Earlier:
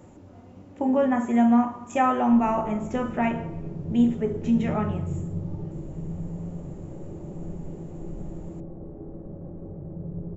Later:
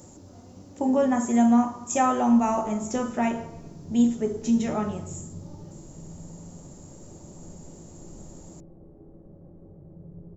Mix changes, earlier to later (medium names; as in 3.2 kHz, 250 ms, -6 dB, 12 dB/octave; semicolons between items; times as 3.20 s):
speech: add resonant high shelf 3.7 kHz +12.5 dB, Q 1.5; background -10.0 dB